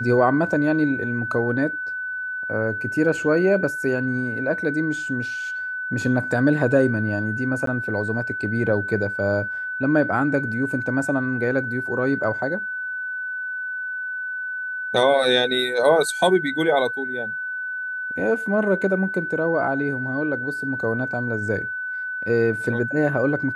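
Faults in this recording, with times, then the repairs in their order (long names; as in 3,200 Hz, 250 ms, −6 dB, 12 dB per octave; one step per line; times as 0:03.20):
whistle 1,500 Hz −26 dBFS
0:07.66–0:07.67: drop-out 13 ms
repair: notch filter 1,500 Hz, Q 30
repair the gap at 0:07.66, 13 ms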